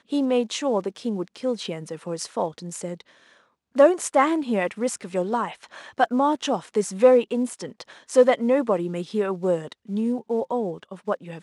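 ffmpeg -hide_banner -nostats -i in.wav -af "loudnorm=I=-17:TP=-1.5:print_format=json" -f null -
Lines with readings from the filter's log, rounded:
"input_i" : "-24.2",
"input_tp" : "-5.3",
"input_lra" : "4.4",
"input_thresh" : "-34.7",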